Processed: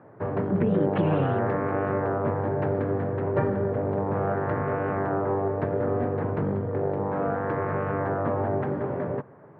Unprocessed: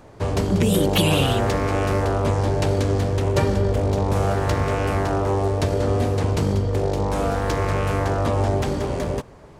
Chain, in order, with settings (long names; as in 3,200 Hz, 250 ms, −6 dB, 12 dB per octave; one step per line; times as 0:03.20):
elliptic band-pass filter 120–1,700 Hz, stop band 70 dB
level −3 dB